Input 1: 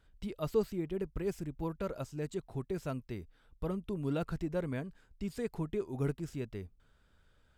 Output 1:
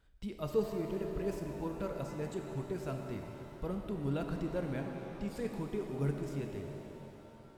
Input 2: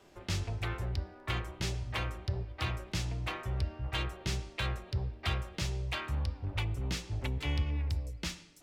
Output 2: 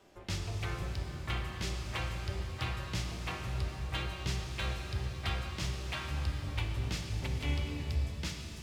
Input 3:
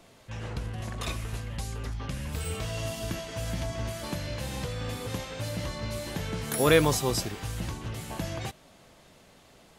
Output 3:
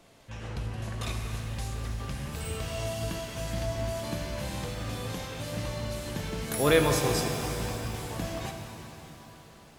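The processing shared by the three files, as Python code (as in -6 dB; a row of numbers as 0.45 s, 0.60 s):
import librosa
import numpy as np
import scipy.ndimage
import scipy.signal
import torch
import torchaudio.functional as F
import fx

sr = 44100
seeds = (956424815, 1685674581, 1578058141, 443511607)

y = fx.rev_shimmer(x, sr, seeds[0], rt60_s=3.5, semitones=7, shimmer_db=-8, drr_db=3.0)
y = y * librosa.db_to_amplitude(-2.5)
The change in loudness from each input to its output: -0.5 LU, -1.0 LU, -0.5 LU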